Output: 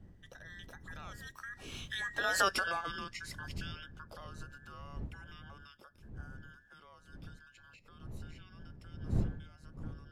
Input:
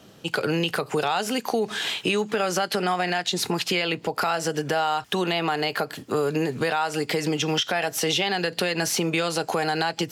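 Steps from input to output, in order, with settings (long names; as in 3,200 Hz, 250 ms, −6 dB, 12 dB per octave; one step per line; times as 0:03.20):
frequency inversion band by band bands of 2,000 Hz
source passing by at 0:02.43, 23 m/s, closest 2.9 metres
wind on the microphone 130 Hz −41 dBFS
level −4 dB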